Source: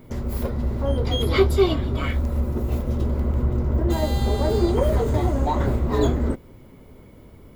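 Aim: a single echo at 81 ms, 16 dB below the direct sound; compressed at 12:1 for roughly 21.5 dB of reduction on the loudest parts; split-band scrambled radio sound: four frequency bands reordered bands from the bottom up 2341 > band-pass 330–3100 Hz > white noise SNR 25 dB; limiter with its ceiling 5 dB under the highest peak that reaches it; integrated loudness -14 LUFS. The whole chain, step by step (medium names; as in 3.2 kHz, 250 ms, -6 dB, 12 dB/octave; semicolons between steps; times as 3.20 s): compression 12:1, threshold -34 dBFS; peak limiter -30.5 dBFS; delay 81 ms -16 dB; four frequency bands reordered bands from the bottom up 2341; band-pass 330–3100 Hz; white noise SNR 25 dB; trim +28.5 dB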